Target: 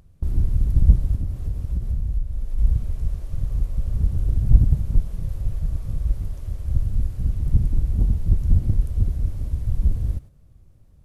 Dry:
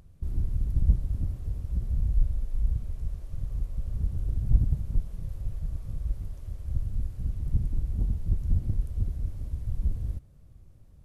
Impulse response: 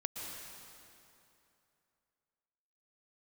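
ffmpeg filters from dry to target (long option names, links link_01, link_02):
-filter_complex "[0:a]asplit=3[link_01][link_02][link_03];[link_01]afade=type=out:start_time=1.15:duration=0.02[link_04];[link_02]acompressor=threshold=-28dB:ratio=6,afade=type=in:start_time=1.15:duration=0.02,afade=type=out:start_time=2.57:duration=0.02[link_05];[link_03]afade=type=in:start_time=2.57:duration=0.02[link_06];[link_04][link_05][link_06]amix=inputs=3:normalize=0,agate=range=-7dB:threshold=-43dB:ratio=16:detection=peak,volume=8dB"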